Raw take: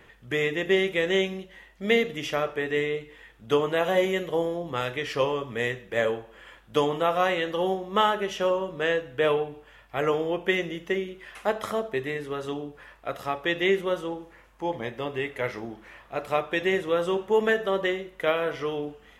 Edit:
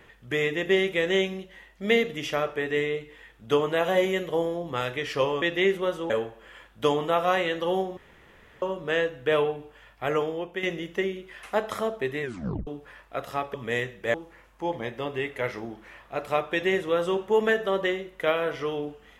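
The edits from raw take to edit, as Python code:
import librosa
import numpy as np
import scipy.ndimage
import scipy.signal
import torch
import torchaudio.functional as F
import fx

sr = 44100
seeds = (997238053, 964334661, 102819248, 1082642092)

y = fx.edit(x, sr, fx.swap(start_s=5.42, length_s=0.6, other_s=13.46, other_length_s=0.68),
    fx.room_tone_fill(start_s=7.89, length_s=0.65),
    fx.fade_out_to(start_s=9.99, length_s=0.56, floor_db=-10.0),
    fx.tape_stop(start_s=12.14, length_s=0.45), tone=tone)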